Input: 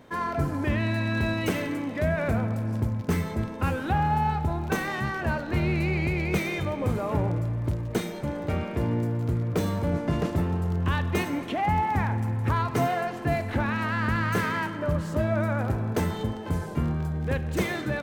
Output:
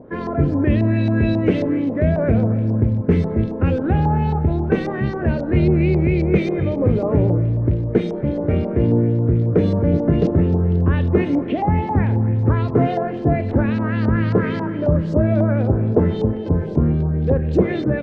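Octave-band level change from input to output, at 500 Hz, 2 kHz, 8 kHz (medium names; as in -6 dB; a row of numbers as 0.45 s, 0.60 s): +10.0 dB, -1.0 dB, under -15 dB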